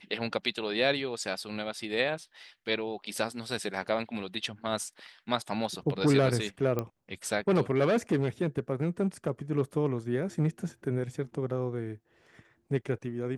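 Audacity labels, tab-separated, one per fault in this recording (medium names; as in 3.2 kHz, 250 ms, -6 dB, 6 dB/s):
6.790000	6.790000	pop -17 dBFS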